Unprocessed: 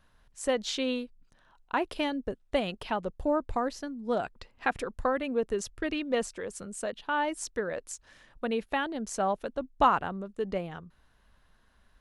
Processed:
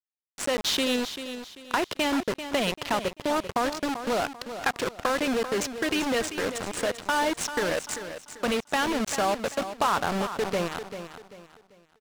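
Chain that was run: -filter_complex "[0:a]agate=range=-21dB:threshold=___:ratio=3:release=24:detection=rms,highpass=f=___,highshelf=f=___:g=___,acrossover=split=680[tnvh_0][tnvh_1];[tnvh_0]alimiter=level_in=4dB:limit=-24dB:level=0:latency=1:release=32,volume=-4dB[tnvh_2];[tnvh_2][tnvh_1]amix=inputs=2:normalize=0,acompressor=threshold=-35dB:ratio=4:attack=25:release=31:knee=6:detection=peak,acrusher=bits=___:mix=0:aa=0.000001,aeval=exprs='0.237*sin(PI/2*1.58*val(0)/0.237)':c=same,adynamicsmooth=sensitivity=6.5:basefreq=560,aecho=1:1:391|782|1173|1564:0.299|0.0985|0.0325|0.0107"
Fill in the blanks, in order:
-50dB, 78, 2700, 5.5, 5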